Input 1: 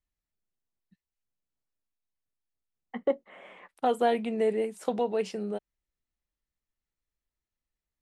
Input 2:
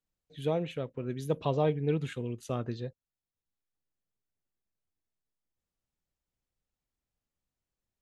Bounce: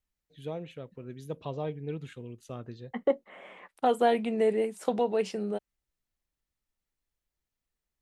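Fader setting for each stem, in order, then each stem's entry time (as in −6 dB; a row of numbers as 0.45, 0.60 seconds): +1.0, −7.0 decibels; 0.00, 0.00 seconds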